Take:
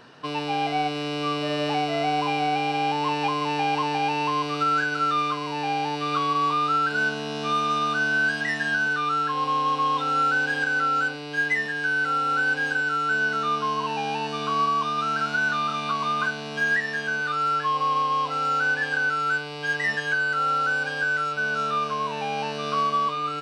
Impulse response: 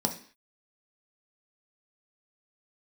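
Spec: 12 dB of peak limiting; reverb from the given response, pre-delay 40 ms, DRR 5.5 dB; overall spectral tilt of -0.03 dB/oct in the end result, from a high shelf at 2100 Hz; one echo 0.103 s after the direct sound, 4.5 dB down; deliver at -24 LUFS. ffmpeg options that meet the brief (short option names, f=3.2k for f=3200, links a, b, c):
-filter_complex "[0:a]highshelf=f=2.1k:g=4.5,alimiter=limit=-23dB:level=0:latency=1,aecho=1:1:103:0.596,asplit=2[a][b];[1:a]atrim=start_sample=2205,adelay=40[c];[b][c]afir=irnorm=-1:irlink=0,volume=-13dB[d];[a][d]amix=inputs=2:normalize=0,volume=3dB"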